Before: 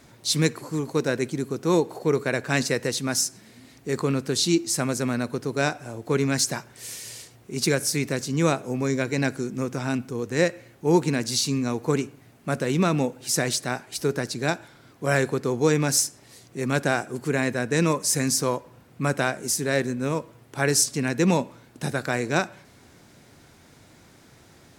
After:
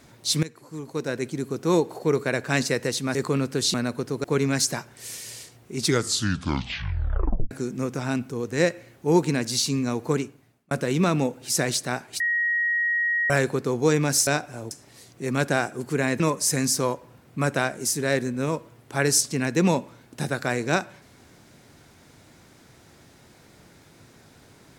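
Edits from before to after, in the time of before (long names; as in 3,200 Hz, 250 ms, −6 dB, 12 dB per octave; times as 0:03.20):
0:00.43–0:01.57: fade in, from −18.5 dB
0:03.15–0:03.89: remove
0:04.48–0:05.09: remove
0:05.59–0:06.03: move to 0:16.06
0:07.53: tape stop 1.77 s
0:11.86–0:12.50: fade out
0:13.99–0:15.09: beep over 1,890 Hz −20.5 dBFS
0:17.55–0:17.83: remove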